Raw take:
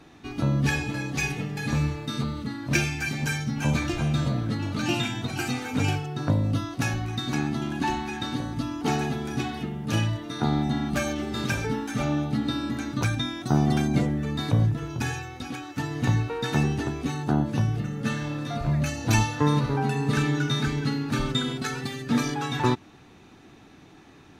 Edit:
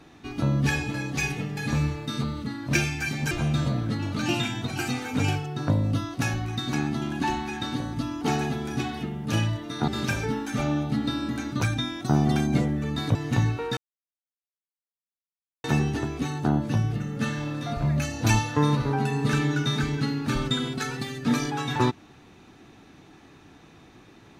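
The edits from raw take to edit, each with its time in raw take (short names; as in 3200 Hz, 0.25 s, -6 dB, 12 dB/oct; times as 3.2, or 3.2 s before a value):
3.31–3.91 cut
10.48–11.29 cut
14.56–15.86 cut
16.48 insert silence 1.87 s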